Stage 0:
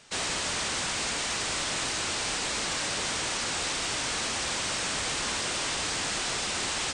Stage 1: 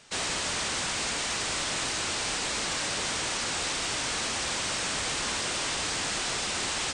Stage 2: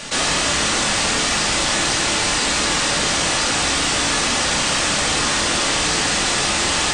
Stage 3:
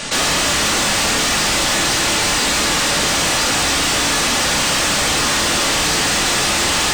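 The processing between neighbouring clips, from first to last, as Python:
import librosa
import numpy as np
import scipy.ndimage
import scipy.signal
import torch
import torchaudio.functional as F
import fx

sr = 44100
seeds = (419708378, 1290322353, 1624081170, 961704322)

y1 = x
y2 = fx.room_shoebox(y1, sr, seeds[0], volume_m3=410.0, walls='furnished', distance_m=2.4)
y2 = fx.env_flatten(y2, sr, amount_pct=50)
y2 = y2 * librosa.db_to_amplitude(7.5)
y3 = 10.0 ** (-18.5 / 20.0) * np.tanh(y2 / 10.0 ** (-18.5 / 20.0))
y3 = y3 * librosa.db_to_amplitude(6.0)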